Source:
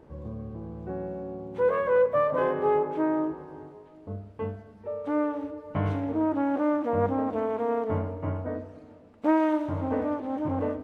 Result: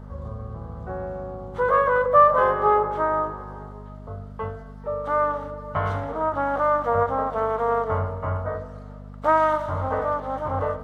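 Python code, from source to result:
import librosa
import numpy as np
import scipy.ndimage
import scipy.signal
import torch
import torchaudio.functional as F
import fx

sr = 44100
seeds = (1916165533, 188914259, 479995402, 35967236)

y = fx.peak_eq(x, sr, hz=230.0, db=-13.5, octaves=1.1)
y = fx.hum_notches(y, sr, base_hz=50, count=10)
y = fx.dmg_buzz(y, sr, base_hz=50.0, harmonics=5, level_db=-47.0, tilt_db=-3, odd_only=False)
y = fx.graphic_eq_31(y, sr, hz=(315, 1250, 2500), db=(-11, 10, -10))
y = fx.end_taper(y, sr, db_per_s=190.0)
y = y * librosa.db_to_amplitude(7.5)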